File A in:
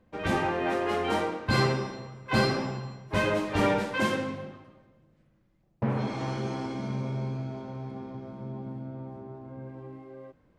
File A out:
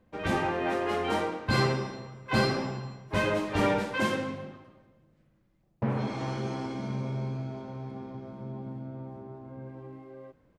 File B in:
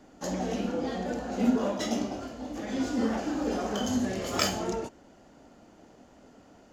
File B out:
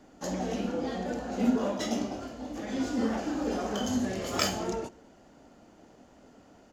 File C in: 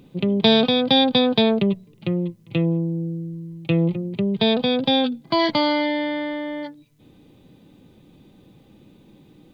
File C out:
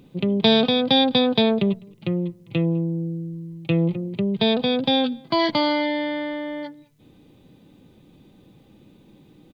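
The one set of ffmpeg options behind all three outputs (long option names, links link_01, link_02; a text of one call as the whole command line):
ffmpeg -i in.wav -filter_complex "[0:a]asplit=2[link_01][link_02];[link_02]adelay=204.1,volume=-27dB,highshelf=frequency=4000:gain=-4.59[link_03];[link_01][link_03]amix=inputs=2:normalize=0,volume=-1dB" out.wav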